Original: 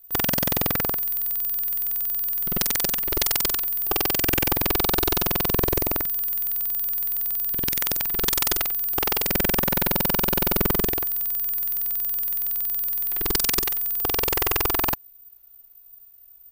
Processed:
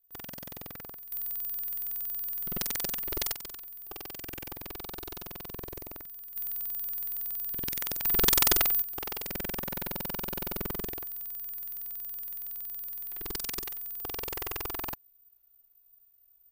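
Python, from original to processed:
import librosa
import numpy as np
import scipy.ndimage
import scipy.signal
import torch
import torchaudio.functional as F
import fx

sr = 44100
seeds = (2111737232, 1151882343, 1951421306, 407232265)

y = fx.gain(x, sr, db=fx.steps((0.0, -20.0), (1.12, -9.0), (3.33, -19.0), (6.36, -9.0), (8.05, -0.5), (8.82, -13.0)))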